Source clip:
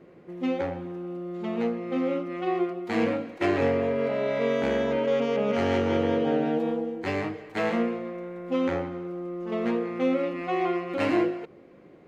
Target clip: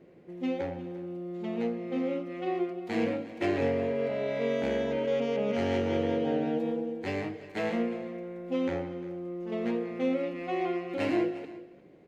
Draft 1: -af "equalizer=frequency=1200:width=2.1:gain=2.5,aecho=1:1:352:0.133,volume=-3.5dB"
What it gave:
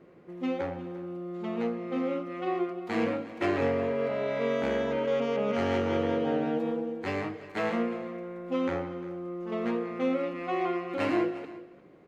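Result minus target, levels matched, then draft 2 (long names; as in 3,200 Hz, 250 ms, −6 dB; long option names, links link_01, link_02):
1,000 Hz band +3.0 dB
-af "equalizer=frequency=1200:width=2.1:gain=-7.5,aecho=1:1:352:0.133,volume=-3.5dB"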